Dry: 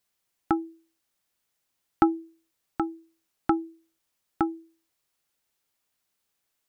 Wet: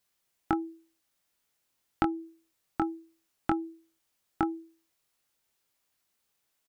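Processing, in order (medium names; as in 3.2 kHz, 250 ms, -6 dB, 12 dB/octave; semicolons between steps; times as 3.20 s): compression 6:1, threshold -24 dBFS, peak gain reduction 10 dB; doubling 22 ms -7 dB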